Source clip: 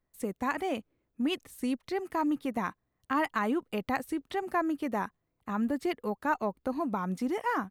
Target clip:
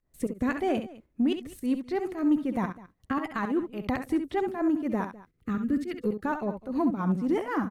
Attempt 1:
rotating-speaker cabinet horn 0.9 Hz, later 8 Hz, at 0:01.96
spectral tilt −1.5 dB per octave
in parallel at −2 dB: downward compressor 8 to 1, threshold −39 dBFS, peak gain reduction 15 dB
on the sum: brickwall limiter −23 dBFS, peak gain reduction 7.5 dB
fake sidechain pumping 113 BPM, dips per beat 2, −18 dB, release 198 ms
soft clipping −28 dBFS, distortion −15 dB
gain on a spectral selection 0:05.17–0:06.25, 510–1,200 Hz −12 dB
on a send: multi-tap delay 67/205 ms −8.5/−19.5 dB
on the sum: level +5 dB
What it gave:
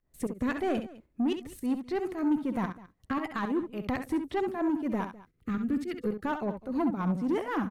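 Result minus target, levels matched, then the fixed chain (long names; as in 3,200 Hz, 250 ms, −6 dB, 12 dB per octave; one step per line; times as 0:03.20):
soft clipping: distortion +15 dB
rotating-speaker cabinet horn 0.9 Hz, later 8 Hz, at 0:01.96
spectral tilt −1.5 dB per octave
in parallel at −2 dB: downward compressor 8 to 1, threshold −39 dBFS, peak gain reduction 15 dB
on the sum: brickwall limiter −23 dBFS, peak gain reduction 7.5 dB
fake sidechain pumping 113 BPM, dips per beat 2, −18 dB, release 198 ms
soft clipping −18.5 dBFS, distortion −30 dB
gain on a spectral selection 0:05.17–0:06.25, 510–1,200 Hz −12 dB
on a send: multi-tap delay 67/205 ms −8.5/−19.5 dB
on the sum: level +5 dB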